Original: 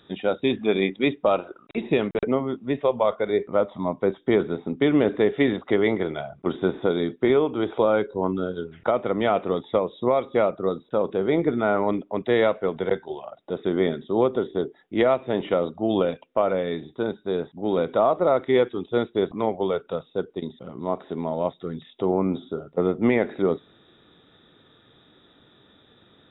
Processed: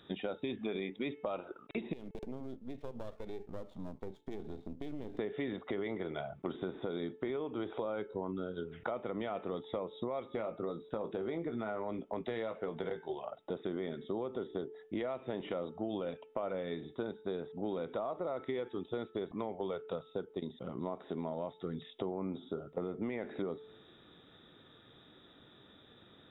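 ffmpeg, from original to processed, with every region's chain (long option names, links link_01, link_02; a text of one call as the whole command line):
ffmpeg -i in.wav -filter_complex "[0:a]asettb=1/sr,asplit=3[link_01][link_02][link_03];[link_01]atrim=end=1.934[link_04];[link_02]atrim=start=1.93:end=5.19,asetpts=PTS-STARTPTS,afade=type=in:duration=0.004:curve=qsin,afade=type=out:start_time=3.256:duration=0.004:curve=qsin,aeval=exprs='if(lt(val(0),0),0.251*val(0),val(0))':channel_layout=same,equalizer=frequency=1400:width=0.44:gain=-15,acompressor=threshold=-34dB:ratio=4:attack=3.2:release=140:knee=1:detection=peak[link_05];[link_03]atrim=start=5.186[link_06];[link_04][link_05]acrossfade=duration=0.004:curve1=hsin:curve2=qsin[link_07];[link_07][link_06]acrossfade=duration=0.004:curve1=qsin:curve2=hsin,asettb=1/sr,asplit=3[link_08][link_09][link_10];[link_08]atrim=end=10.204[link_11];[link_09]atrim=start=10.2:end=13.13,asetpts=PTS-STARTPTS,afade=type=in:duration=0.004:curve=qsin,afade=type=out:start_time=2.926:duration=0.004:curve=qsin,asplit=2[link_12][link_13];[link_13]adelay=18,volume=-8dB[link_14];[link_12][link_14]amix=inputs=2:normalize=0,atrim=end_sample=129213,acompressor=threshold=-23dB:ratio=2.5:attack=3.2:release=140:knee=1:detection=peak[link_15];[link_10]atrim=start=13.126[link_16];[link_11][link_15]acrossfade=duration=0.004:curve1=hsin:curve2=qsin[link_17];[link_17][link_16]acrossfade=duration=0.004:curve1=qsin:curve2=hsin,bandreject=frequency=436.7:width_type=h:width=4,bandreject=frequency=873.4:width_type=h:width=4,bandreject=frequency=1310.1:width_type=h:width=4,bandreject=frequency=1746.8:width_type=h:width=4,bandreject=frequency=2183.5:width_type=h:width=4,bandreject=frequency=2620.2:width_type=h:width=4,bandreject=frequency=3056.9:width_type=h:width=4,alimiter=limit=-14.5dB:level=0:latency=1:release=32,acompressor=threshold=-31dB:ratio=6,volume=-3.5dB" out.wav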